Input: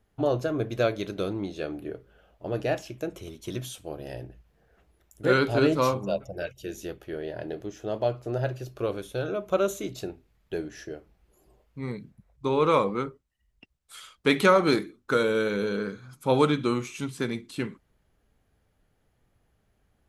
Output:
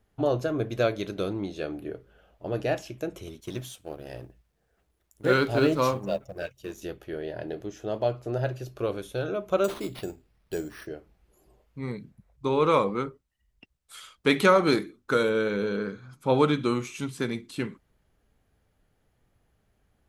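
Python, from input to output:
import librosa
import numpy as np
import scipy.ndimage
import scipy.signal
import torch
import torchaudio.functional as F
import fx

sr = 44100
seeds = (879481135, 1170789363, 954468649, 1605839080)

y = fx.law_mismatch(x, sr, coded='A', at=(3.4, 6.82))
y = fx.resample_bad(y, sr, factor=6, down='none', up='hold', at=(9.64, 10.87))
y = fx.lowpass(y, sr, hz=3900.0, slope=6, at=(15.29, 16.48))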